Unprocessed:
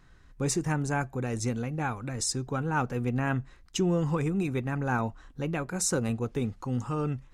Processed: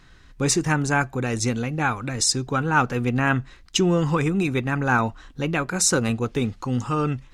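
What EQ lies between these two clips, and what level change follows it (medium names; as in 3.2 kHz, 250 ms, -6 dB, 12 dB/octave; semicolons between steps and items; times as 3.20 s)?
peaking EQ 300 Hz +2 dB; dynamic bell 1.3 kHz, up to +4 dB, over -42 dBFS, Q 1.5; peaking EQ 3.6 kHz +7.5 dB 2 oct; +5.0 dB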